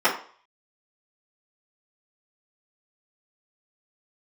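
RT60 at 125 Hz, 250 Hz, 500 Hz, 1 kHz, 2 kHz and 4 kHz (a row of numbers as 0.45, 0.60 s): 0.30, 0.40, 0.45, 0.50, 0.45, 0.40 s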